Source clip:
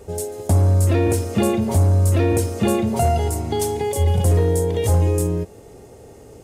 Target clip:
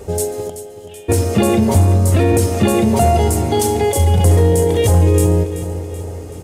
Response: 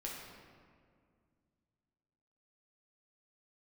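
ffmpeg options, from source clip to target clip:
-filter_complex "[0:a]alimiter=limit=-13.5dB:level=0:latency=1:release=29,asplit=3[link_01][link_02][link_03];[link_01]afade=type=out:start_time=0.48:duration=0.02[link_04];[link_02]bandpass=frequency=3100:width_type=q:width=17:csg=0,afade=type=in:start_time=0.48:duration=0.02,afade=type=out:start_time=1.08:duration=0.02[link_05];[link_03]afade=type=in:start_time=1.08:duration=0.02[link_06];[link_04][link_05][link_06]amix=inputs=3:normalize=0,aecho=1:1:380|760|1140|1520|1900|2280:0.251|0.136|0.0732|0.0396|0.0214|0.0115,asplit=2[link_07][link_08];[1:a]atrim=start_sample=2205[link_09];[link_08][link_09]afir=irnorm=-1:irlink=0,volume=-13dB[link_10];[link_07][link_10]amix=inputs=2:normalize=0,volume=7dB"

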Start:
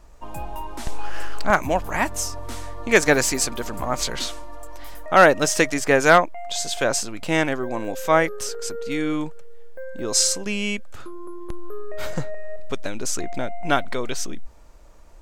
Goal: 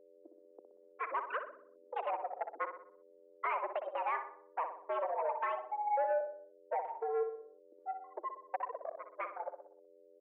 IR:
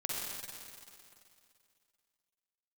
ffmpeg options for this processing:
-filter_complex "[0:a]afftfilt=real='re*gte(hypot(re,im),0.158)':imag='im*gte(hypot(re,im),0.158)':win_size=1024:overlap=0.75,afwtdn=0.0562,afftfilt=real='re*gte(hypot(re,im),0.126)':imag='im*gte(hypot(re,im),0.126)':win_size=1024:overlap=0.75,acrossover=split=850|980[link_01][link_02][link_03];[link_01]acontrast=38[link_04];[link_04][link_02][link_03]amix=inputs=3:normalize=0,alimiter=limit=-6.5dB:level=0:latency=1:release=392,acompressor=threshold=-24dB:ratio=10,flanger=delay=0.6:depth=9:regen=-12:speed=0.91:shape=triangular,asoftclip=type=tanh:threshold=-29dB,asplit=2[link_05][link_06];[link_06]adelay=92,lowpass=frequency=1200:poles=1,volume=-7dB,asplit=2[link_07][link_08];[link_08]adelay=92,lowpass=frequency=1200:poles=1,volume=0.53,asplit=2[link_09][link_10];[link_10]adelay=92,lowpass=frequency=1200:poles=1,volume=0.53,asplit=2[link_11][link_12];[link_12]adelay=92,lowpass=frequency=1200:poles=1,volume=0.53,asplit=2[link_13][link_14];[link_14]adelay=92,lowpass=frequency=1200:poles=1,volume=0.53,asplit=2[link_15][link_16];[link_16]adelay=92,lowpass=frequency=1200:poles=1,volume=0.53[link_17];[link_07][link_09][link_11][link_13][link_15][link_17]amix=inputs=6:normalize=0[link_18];[link_05][link_18]amix=inputs=2:normalize=0,aeval=exprs='val(0)+0.00282*(sin(2*PI*60*n/s)+sin(2*PI*2*60*n/s)/2+sin(2*PI*3*60*n/s)/3+sin(2*PI*4*60*n/s)/4+sin(2*PI*5*60*n/s)/5)':channel_layout=same,asetrate=65709,aresample=44100,highpass=frequency=280:width_type=q:width=0.5412,highpass=frequency=280:width_type=q:width=1.307,lowpass=frequency=2200:width_type=q:width=0.5176,lowpass=frequency=2200:width_type=q:width=0.7071,lowpass=frequency=2200:width_type=q:width=1.932,afreqshift=140"

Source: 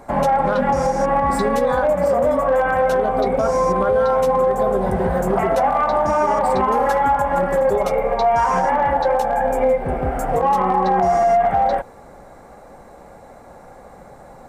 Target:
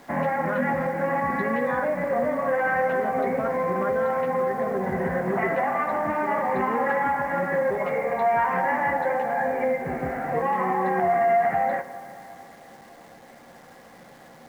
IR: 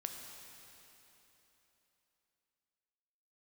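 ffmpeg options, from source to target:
-filter_complex "[0:a]highpass=160,equalizer=frequency=420:width_type=q:width=4:gain=-6,equalizer=frequency=600:width_type=q:width=4:gain=-6,equalizer=frequency=860:width_type=q:width=4:gain=-6,equalizer=frequency=1300:width_type=q:width=4:gain=-5,equalizer=frequency=1900:width_type=q:width=4:gain=9,lowpass=frequency=2400:width=0.5412,lowpass=frequency=2400:width=1.3066,asplit=2[link_01][link_02];[1:a]atrim=start_sample=2205,lowshelf=frequency=120:gain=-5.5,adelay=13[link_03];[link_02][link_03]afir=irnorm=-1:irlink=0,volume=-6dB[link_04];[link_01][link_04]amix=inputs=2:normalize=0,acrusher=bits=9:dc=4:mix=0:aa=0.000001,volume=-3dB"

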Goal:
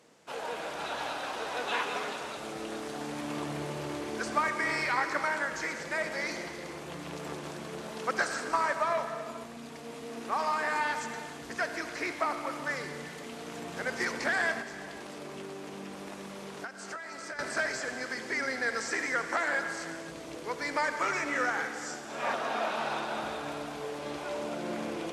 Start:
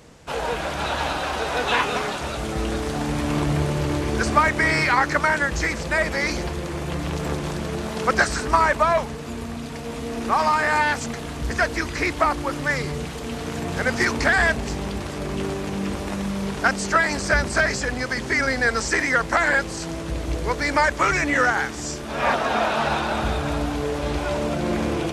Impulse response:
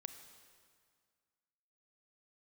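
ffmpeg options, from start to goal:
-filter_complex "[0:a]highpass=250[link_01];[1:a]atrim=start_sample=2205,afade=type=out:start_time=0.35:duration=0.01,atrim=end_sample=15876,asetrate=25578,aresample=44100[link_02];[link_01][link_02]afir=irnorm=-1:irlink=0,asettb=1/sr,asplit=3[link_03][link_04][link_05];[link_03]atrim=end=14.614[link_06];[link_04]atrim=start=14.61:end=17.39,asetpts=PTS-STARTPTS,afade=type=in:duration=0.004:curve=qsin,afade=type=out:start_time=2.776:duration=0.004:curve=qsin,acompressor=threshold=-29dB:ratio=16[link_07];[link_05]atrim=start=17.386[link_08];[link_06][link_07]acrossfade=duration=0.004:curve1=hsin:curve2=qsin[link_09];[link_09][link_08]acrossfade=duration=0.004:curve1=qsin:curve2=hsin,volume=-8.5dB"

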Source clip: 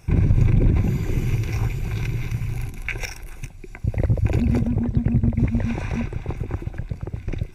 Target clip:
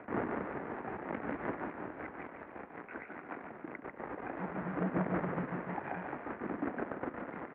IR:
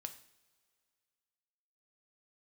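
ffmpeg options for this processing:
-filter_complex "[0:a]aemphasis=mode=reproduction:type=75fm,alimiter=limit=-16.5dB:level=0:latency=1:release=218,asettb=1/sr,asplit=3[link_01][link_02][link_03];[link_01]atrim=end=1.504[link_04];[link_02]atrim=start=1.5:end=3.99,asetpts=PTS-STARTPTS,afade=type=in:duration=0.004:curve=qsin,afade=type=out:start_time=2.486:duration=0.004:curve=qsin,acompressor=threshold=-34dB:ratio=5[link_05];[link_03]atrim=start=3.986[link_06];[link_04][link_05]acrossfade=duration=0.004:curve1=hsin:curve2=qsin[link_07];[link_07][link_06]acrossfade=duration=0.004:curve1=qsin:curve2=hsin,tremolo=f=5.4:d=0.78,asoftclip=type=tanh:threshold=-29.5dB,aphaser=in_gain=1:out_gain=1:delay=1.2:decay=0.64:speed=0.59:type=sinusoidal,acrusher=bits=2:mode=log:mix=0:aa=0.000001,asplit=7[link_08][link_09][link_10][link_11][link_12][link_13][link_14];[link_09]adelay=144,afreqshift=-41,volume=-6.5dB[link_15];[link_10]adelay=288,afreqshift=-82,volume=-12.7dB[link_16];[link_11]adelay=432,afreqshift=-123,volume=-18.9dB[link_17];[link_12]adelay=576,afreqshift=-164,volume=-25.1dB[link_18];[link_13]adelay=720,afreqshift=-205,volume=-31.3dB[link_19];[link_14]adelay=864,afreqshift=-246,volume=-37.5dB[link_20];[link_08][link_15][link_16][link_17][link_18][link_19][link_20]amix=inputs=7:normalize=0,highpass=frequency=290:width_type=q:width=0.5412,highpass=frequency=290:width_type=q:width=1.307,lowpass=frequency=2000:width_type=q:width=0.5176,lowpass=frequency=2000:width_type=q:width=0.7071,lowpass=frequency=2000:width_type=q:width=1.932,afreqshift=-53,volume=1.5dB"

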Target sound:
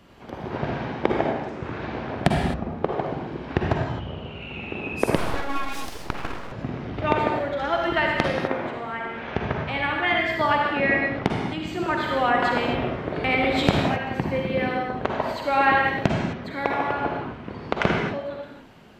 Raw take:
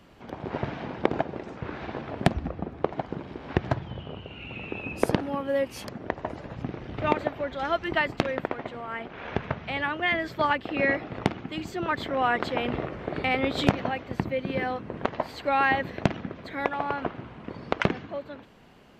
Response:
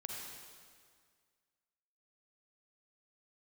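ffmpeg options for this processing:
-filter_complex "[1:a]atrim=start_sample=2205,afade=type=out:start_time=0.32:duration=0.01,atrim=end_sample=14553[link_01];[0:a][link_01]afir=irnorm=-1:irlink=0,asettb=1/sr,asplit=3[link_02][link_03][link_04];[link_02]atrim=end=5.164[link_05];[link_03]atrim=start=5.16:end=6.52,asetpts=PTS-STARTPTS,afade=type=in:duration=0.004:curve=qsin,afade=type=out:start_time=1.356:duration=0.004:curve=qsin,aeval=exprs='abs(val(0))':channel_layout=same[link_06];[link_04]atrim=start=6.516[link_07];[link_05][link_06]acrossfade=duration=0.004:curve1=hsin:curve2=qsin[link_08];[link_08][link_07]acrossfade=duration=0.004:curve1=qsin:curve2=hsin,asettb=1/sr,asplit=3[link_09][link_10][link_11];[link_09]atrim=end=10.774[link_12];[link_10]atrim=start=10.77:end=12.04,asetpts=PTS-STARTPTS,afade=type=in:duration=0.004:curve=qsin,afade=type=out:start_time=1.266:duration=0.004:curve=qsin,highshelf=frequency=7600:gain=-6[link_13];[link_11]atrim=start=12.036[link_14];[link_12][link_13]acrossfade=duration=0.004:curve1=hsin:curve2=qsin[link_15];[link_15][link_14]acrossfade=duration=0.004:curve1=qsin:curve2=hsin,volume=6dB"

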